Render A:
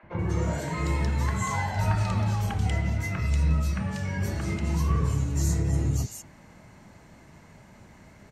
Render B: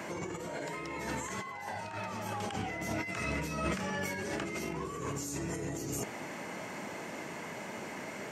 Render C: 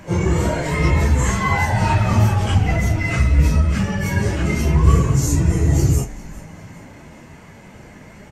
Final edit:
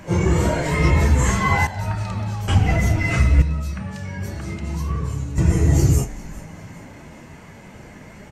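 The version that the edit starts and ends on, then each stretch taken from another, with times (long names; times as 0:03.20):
C
0:01.67–0:02.48: punch in from A
0:03.42–0:05.38: punch in from A
not used: B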